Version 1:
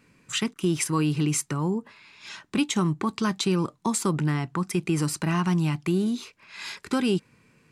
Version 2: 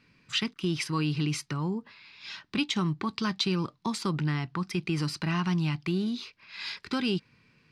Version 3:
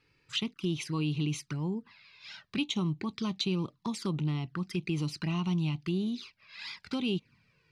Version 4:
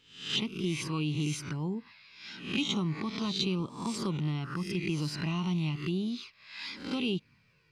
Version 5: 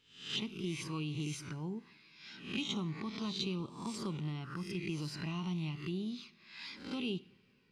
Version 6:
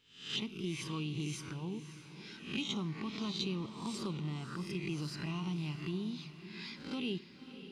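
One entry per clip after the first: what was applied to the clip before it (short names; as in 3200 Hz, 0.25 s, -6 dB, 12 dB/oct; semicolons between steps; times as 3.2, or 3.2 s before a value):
EQ curve 120 Hz 0 dB, 520 Hz -5 dB, 4900 Hz +5 dB, 7300 Hz -12 dB; gain -2.5 dB
envelope flanger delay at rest 2.4 ms, full sweep at -26.5 dBFS; gain -2 dB
spectral swells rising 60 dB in 0.54 s; gain -1 dB
two-slope reverb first 0.6 s, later 3.6 s, from -20 dB, DRR 15.5 dB; gain -6.5 dB
diffused feedback echo 0.559 s, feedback 41%, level -12 dB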